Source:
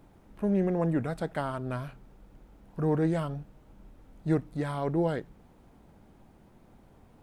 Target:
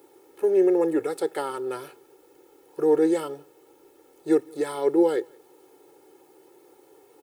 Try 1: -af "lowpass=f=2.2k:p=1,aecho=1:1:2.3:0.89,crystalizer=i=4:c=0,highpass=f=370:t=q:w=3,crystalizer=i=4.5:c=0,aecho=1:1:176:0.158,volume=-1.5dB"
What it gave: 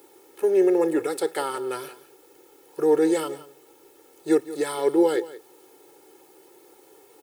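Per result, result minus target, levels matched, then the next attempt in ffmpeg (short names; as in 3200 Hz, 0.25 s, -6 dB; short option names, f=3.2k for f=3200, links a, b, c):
echo-to-direct +11.5 dB; 2000 Hz band +3.5 dB
-af "lowpass=f=2.2k:p=1,aecho=1:1:2.3:0.89,crystalizer=i=4:c=0,highpass=f=370:t=q:w=3,crystalizer=i=4.5:c=0,aecho=1:1:176:0.0422,volume=-1.5dB"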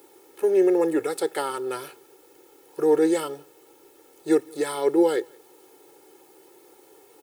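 2000 Hz band +3.5 dB
-af "lowpass=f=1k:p=1,aecho=1:1:2.3:0.89,crystalizer=i=4:c=0,highpass=f=370:t=q:w=3,crystalizer=i=4.5:c=0,aecho=1:1:176:0.0422,volume=-1.5dB"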